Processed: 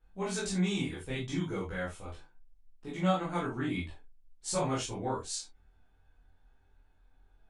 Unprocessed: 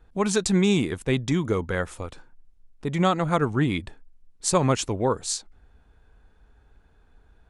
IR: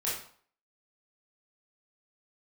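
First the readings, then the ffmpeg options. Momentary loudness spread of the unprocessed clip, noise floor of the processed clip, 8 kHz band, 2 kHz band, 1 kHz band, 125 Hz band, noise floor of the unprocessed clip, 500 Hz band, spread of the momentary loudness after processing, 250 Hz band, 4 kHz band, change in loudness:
10 LU, -66 dBFS, -9.5 dB, -8.0 dB, -8.5 dB, -10.0 dB, -58 dBFS, -10.5 dB, 14 LU, -9.5 dB, -8.0 dB, -9.5 dB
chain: -filter_complex "[0:a]flanger=delay=22.5:depth=3.4:speed=0.29[s0];[1:a]atrim=start_sample=2205,atrim=end_sample=6615,asetrate=74970,aresample=44100[s1];[s0][s1]afir=irnorm=-1:irlink=0,volume=0.473"

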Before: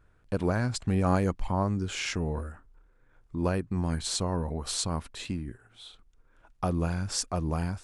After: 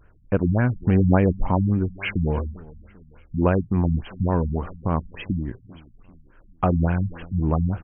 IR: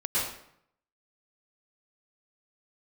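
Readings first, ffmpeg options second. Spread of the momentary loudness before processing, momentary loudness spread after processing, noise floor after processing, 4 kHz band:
11 LU, 9 LU, -54 dBFS, -9.0 dB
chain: -af "aecho=1:1:394|788|1182:0.0841|0.0387|0.0178,afftfilt=real='re*lt(b*sr/1024,220*pow(3300/220,0.5+0.5*sin(2*PI*3.5*pts/sr)))':imag='im*lt(b*sr/1024,220*pow(3300/220,0.5+0.5*sin(2*PI*3.5*pts/sr)))':win_size=1024:overlap=0.75,volume=2.66"

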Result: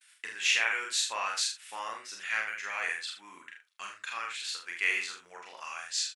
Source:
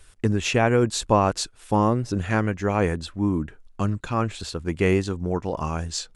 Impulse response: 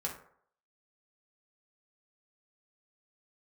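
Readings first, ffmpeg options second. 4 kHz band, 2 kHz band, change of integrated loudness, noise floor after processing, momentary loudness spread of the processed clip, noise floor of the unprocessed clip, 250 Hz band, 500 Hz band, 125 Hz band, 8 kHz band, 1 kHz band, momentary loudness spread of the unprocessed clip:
+1.0 dB, +1.0 dB, -7.5 dB, -62 dBFS, 18 LU, -52 dBFS, -36.5 dB, -24.5 dB, under -40 dB, -1.0 dB, -12.0 dB, 8 LU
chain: -filter_complex "[0:a]agate=range=0.0224:threshold=0.00447:ratio=3:detection=peak,highpass=f=2000:t=q:w=1.8,asplit=2[s0][s1];[s1]adelay=46,volume=0.596[s2];[s0][s2]amix=inputs=2:normalize=0,asplit=2[s3][s4];[s4]aecho=0:1:35|73:0.596|0.282[s5];[s3][s5]amix=inputs=2:normalize=0,volume=0.596"

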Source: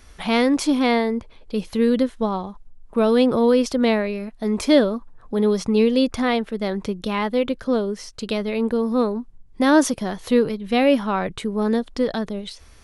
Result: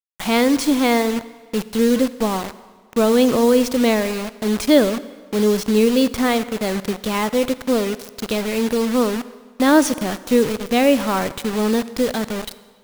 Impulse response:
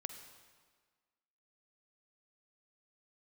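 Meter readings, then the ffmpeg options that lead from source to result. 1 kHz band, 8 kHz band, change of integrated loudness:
+2.0 dB, +7.0 dB, +2.0 dB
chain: -filter_complex "[0:a]acrusher=bits=4:mix=0:aa=0.000001,asplit=2[s0][s1];[1:a]atrim=start_sample=2205[s2];[s1][s2]afir=irnorm=-1:irlink=0,volume=0.891[s3];[s0][s3]amix=inputs=2:normalize=0,volume=0.75"

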